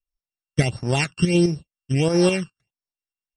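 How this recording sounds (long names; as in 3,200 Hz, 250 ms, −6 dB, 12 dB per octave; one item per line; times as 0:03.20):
a buzz of ramps at a fixed pitch in blocks of 16 samples
tremolo saw up 4.8 Hz, depth 55%
phaser sweep stages 12, 1.5 Hz, lowest notch 640–2,900 Hz
MP3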